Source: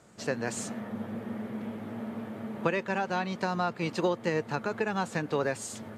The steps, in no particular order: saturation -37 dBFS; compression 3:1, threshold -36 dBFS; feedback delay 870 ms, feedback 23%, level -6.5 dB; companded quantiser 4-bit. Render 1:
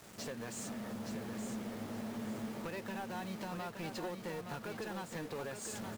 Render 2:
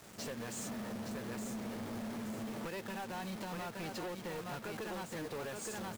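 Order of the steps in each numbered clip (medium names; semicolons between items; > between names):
companded quantiser > compression > saturation > feedback delay; feedback delay > compression > saturation > companded quantiser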